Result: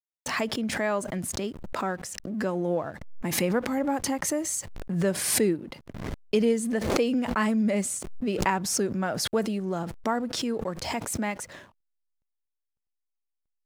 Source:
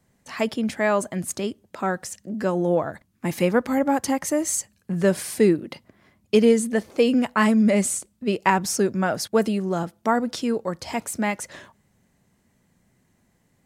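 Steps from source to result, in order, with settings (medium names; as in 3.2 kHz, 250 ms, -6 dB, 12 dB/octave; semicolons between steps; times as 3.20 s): in parallel at -2.5 dB: compression 16:1, threshold -27 dBFS, peak gain reduction 16 dB; on the sum: hysteresis with a dead band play -42.5 dBFS; swell ahead of each attack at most 46 dB/s; trim -8 dB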